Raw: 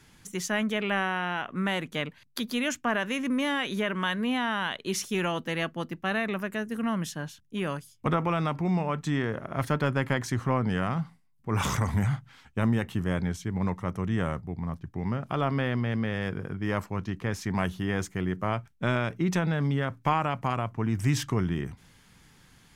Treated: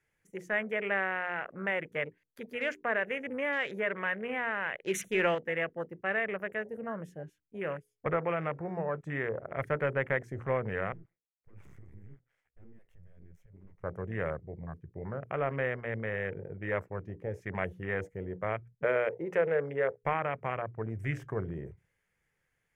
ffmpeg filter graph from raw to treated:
-filter_complex "[0:a]asettb=1/sr,asplit=3[a][b][c];[a]atrim=end=4.874[d];[b]atrim=start=4.87:end=5.35,asetpts=PTS-STARTPTS,afade=t=in:d=0.004:c=qsin,afade=t=out:st=0.476:d=0.004:c=qsin,bandreject=f=50:t=h:w=6,bandreject=f=100:t=h:w=6,bandreject=f=150:t=h:w=6,bandreject=f=200:t=h:w=6,acontrast=25,asuperstop=centerf=4900:order=20:qfactor=3.3[e];[c]atrim=start=5.346[f];[d][e]acrossfade=d=0.004:c1=hsin:c2=qsin[g];[g][f]acrossfade=d=0.004:c1=qsin:c2=hsin,asettb=1/sr,asplit=3[h][i][j];[h]atrim=end=10.924[k];[i]atrim=start=10.92:end=13.84,asetpts=PTS-STARTPTS,afade=t=in:d=0.004:c=qsin,afade=t=out:st=2.916:d=0.004:c=qsin,acompressor=threshold=-44dB:ratio=2:attack=3.2:release=140:knee=1:detection=peak,aeval=exprs='max(val(0),0)':c=same[l];[j]atrim=start=13.836[m];[k][l]acrossfade=d=0.004:c1=hsin:c2=qsin[n];[n][m]acrossfade=d=0.004:c1=qsin:c2=hsin,asettb=1/sr,asplit=3[o][p][q];[o]atrim=end=18.844[r];[p]atrim=start=18.84:end=20.02,asetpts=PTS-STARTPTS,afade=t=in:d=0.004:c=qsin,afade=t=out:st=1.176:d=0.004:c=qsin,highpass=f=350:p=1,equalizer=f=470:t=o:w=0.53:g=12.5[s];[q]atrim=start=20.016[t];[r][s]acrossfade=d=0.004:c1=hsin:c2=qsin[u];[u][t]acrossfade=d=0.004:c1=qsin:c2=hsin,bandreject=f=60:t=h:w=6,bandreject=f=120:t=h:w=6,bandreject=f=180:t=h:w=6,bandreject=f=240:t=h:w=6,bandreject=f=300:t=h:w=6,bandreject=f=360:t=h:w=6,bandreject=f=420:t=h:w=6,bandreject=f=480:t=h:w=6,afwtdn=0.0158,equalizer=f=250:t=o:w=1:g=-9,equalizer=f=500:t=o:w=1:g=11,equalizer=f=1k:t=o:w=1:g=-5,equalizer=f=2k:t=o:w=1:g=11,equalizer=f=4k:t=o:w=1:g=-11,volume=-6.5dB"

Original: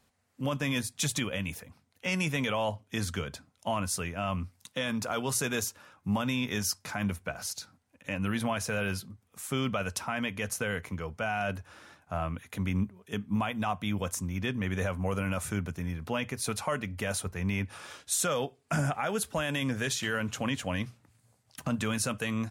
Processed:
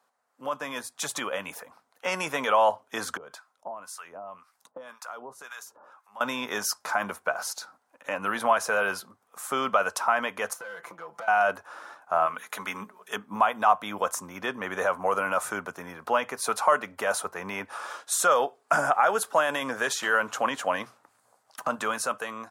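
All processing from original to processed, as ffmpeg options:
-filter_complex "[0:a]asettb=1/sr,asplit=3[a][b][c];[a]atrim=end=3.174[d];[b]atrim=start=3.17:end=6.21,asetpts=PTS-STARTPTS,afade=t=in:d=0.004:c=qsin,afade=t=out:st=3.036:d=0.004:c=qsin,acompressor=threshold=-38dB:ratio=12:attack=3.2:release=140:knee=1:detection=peak,acrossover=split=900[e][f];[e]aeval=exprs='val(0)*(1-1/2+1/2*cos(2*PI*1.9*n/s))':c=same[g];[f]aeval=exprs='val(0)*(1-1/2-1/2*cos(2*PI*1.9*n/s))':c=same[h];[g][h]amix=inputs=2:normalize=0[i];[c]atrim=start=6.206[j];[d][i]acrossfade=d=0.004:c1=hsin:c2=qsin[k];[k][j]acrossfade=d=0.004:c1=qsin:c2=hsin,asettb=1/sr,asplit=3[l][m][n];[l]atrim=end=10.534[o];[m]atrim=start=10.53:end=11.28,asetpts=PTS-STARTPTS,afade=t=in:d=0.004:c=qsin,afade=t=out:st=0.746:d=0.004:c=qsin,aeval=exprs='clip(val(0),-1,0.0188)':c=same,aecho=1:1:5.9:0.99,atrim=end_sample=33075,acompressor=threshold=-42dB:ratio=12:attack=3.2:release=140:knee=1:detection=peak[p];[n]atrim=start=11.276[q];[o][p]acrossfade=d=0.004:c1=hsin:c2=qsin[r];[r][q]acrossfade=d=0.004:c1=qsin:c2=hsin,asettb=1/sr,asplit=3[s][t][u];[s]atrim=end=12.264[v];[t]atrim=start=12.26:end=13.16,asetpts=PTS-STARTPTS,afade=t=in:d=0.004:c=qsin,afade=t=out:st=0.896:d=0.004:c=qsin,tiltshelf=f=850:g=-6,bandreject=f=60:t=h:w=6,bandreject=f=120:t=h:w=6,bandreject=f=180:t=h:w=6,bandreject=f=240:t=h:w=6,bandreject=f=300:t=h:w=6,bandreject=f=360:t=h:w=6,bandreject=f=420:t=h:w=6,bandreject=f=480:t=h:w=6,bandreject=f=540:t=h:w=6,aecho=1:1:4.7:0.33,atrim=end_sample=39690[w];[u]atrim=start=13.156[x];[v][w]acrossfade=d=0.004:c1=hsin:c2=qsin[y];[y][x]acrossfade=d=0.004:c1=qsin:c2=hsin,highpass=650,highshelf=f=1.7k:t=q:w=1.5:g=-9,dynaudnorm=f=420:g=5:m=7.5dB,volume=4dB"

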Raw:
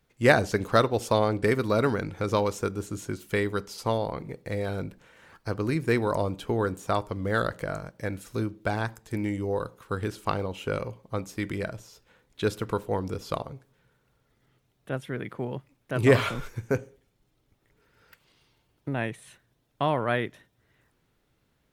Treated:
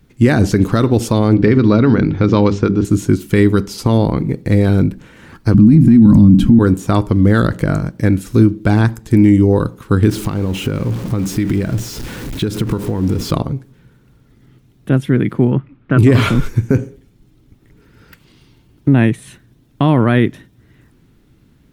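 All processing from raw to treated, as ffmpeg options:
-filter_complex "[0:a]asettb=1/sr,asplit=3[a][b][c];[a]atrim=end=1.344[d];[b]atrim=start=1.34:end=2.85,asetpts=PTS-STARTPTS,afade=t=in:d=0.004:c=qsin,afade=t=out:st=1.506:d=0.004:c=qsin,lowpass=f=5k:w=0.5412,lowpass=f=5k:w=1.3066,bandreject=f=50:t=h:w=6,bandreject=f=100:t=h:w=6,bandreject=f=150:t=h:w=6,bandreject=f=200:t=h:w=6,bandreject=f=250:t=h:w=6,bandreject=f=300:t=h:w=6,bandreject=f=350:t=h:w=6,bandreject=f=400:t=h:w=6[e];[c]atrim=start=2.846[f];[d][e]acrossfade=d=0.004:c1=hsin:c2=qsin[g];[g][f]acrossfade=d=0.004:c1=qsin:c2=hsin,asettb=1/sr,asplit=3[h][i][j];[h]atrim=end=5.544[k];[i]atrim=start=5.54:end=6.59,asetpts=PTS-STARTPTS,afade=t=in:d=0.004:c=qsin,afade=t=out:st=1.046:d=0.004:c=qsin,lowshelf=f=320:t=q:w=3:g=13,aecho=1:1:3.7:0.34,atrim=end_sample=46305[l];[j]atrim=start=6.586[m];[k][l]acrossfade=d=0.004:c1=hsin:c2=qsin[n];[n][m]acrossfade=d=0.004:c1=qsin:c2=hsin,asettb=1/sr,asplit=3[o][p][q];[o]atrim=end=10.094[r];[p]atrim=start=10.09:end=13.31,asetpts=PTS-STARTPTS,afade=t=in:d=0.004:c=qsin,afade=t=out:st=3.216:d=0.004:c=qsin,aeval=exprs='val(0)+0.5*0.0126*sgn(val(0))':c=same,acompressor=threshold=-32dB:ratio=8:attack=3.2:release=140:knee=1:detection=peak[s];[q]atrim=start=13.306[t];[r][s]acrossfade=d=0.004:c1=hsin:c2=qsin[u];[u][t]acrossfade=d=0.004:c1=qsin:c2=hsin,asettb=1/sr,asplit=3[v][w][x];[v]atrim=end=15.514[y];[w]atrim=start=15.51:end=15.98,asetpts=PTS-STARTPTS,afade=t=in:d=0.004:c=qsin,afade=t=out:st=0.466:d=0.004:c=qsin,lowpass=f=3.1k:w=0.5412,lowpass=f=3.1k:w=1.3066,equalizer=f=1.3k:t=o:w=0.43:g=9[z];[x]atrim=start=15.976[aa];[y][z]acrossfade=d=0.004:c1=hsin:c2=qsin[ab];[ab][aa]acrossfade=d=0.004:c1=qsin:c2=hsin,lowshelf=f=400:t=q:w=1.5:g=9,alimiter=level_in=12.5dB:limit=-1dB:release=50:level=0:latency=1,volume=-1dB"

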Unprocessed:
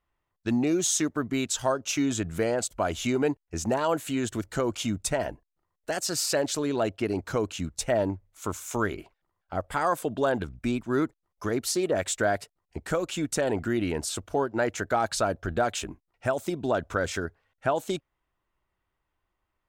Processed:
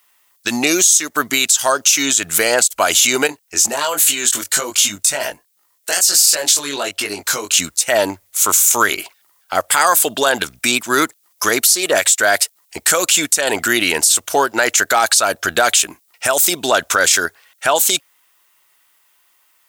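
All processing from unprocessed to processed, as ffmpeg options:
-filter_complex "[0:a]asettb=1/sr,asplit=3[a][b][c];[a]atrim=end=3.274[d];[b]atrim=start=3.27:end=7.58,asetpts=PTS-STARTPTS,afade=t=in:d=0.004:c=qsin,afade=t=out:st=4.306:d=0.004:c=qsin,acompressor=threshold=-28dB:ratio=4:attack=3.2:release=140:knee=1:detection=peak,flanger=delay=19.5:depth=2.4:speed=1.3[e];[c]atrim=start=7.576[f];[d][e]acrossfade=d=0.004:c1=hsin:c2=qsin[g];[g][f]acrossfade=d=0.004:c1=qsin:c2=hsin,aderivative,acompressor=threshold=-37dB:ratio=6,alimiter=level_in=34dB:limit=-1dB:release=50:level=0:latency=1,volume=-1dB"

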